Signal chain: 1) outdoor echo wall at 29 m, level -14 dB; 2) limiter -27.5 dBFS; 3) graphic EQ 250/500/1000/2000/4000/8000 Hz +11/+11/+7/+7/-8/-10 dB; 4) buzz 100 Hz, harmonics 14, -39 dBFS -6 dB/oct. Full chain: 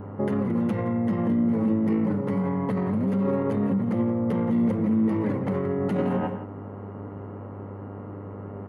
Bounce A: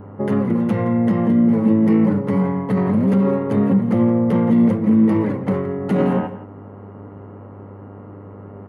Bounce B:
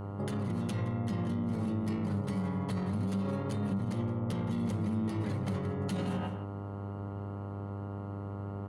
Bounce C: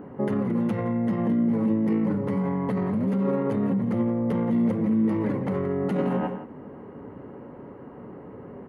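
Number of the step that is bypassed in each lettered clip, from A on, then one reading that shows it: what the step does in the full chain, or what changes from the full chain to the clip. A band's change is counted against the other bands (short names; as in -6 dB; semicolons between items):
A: 2, mean gain reduction 4.5 dB; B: 3, 125 Hz band +5.5 dB; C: 4, momentary loudness spread change +4 LU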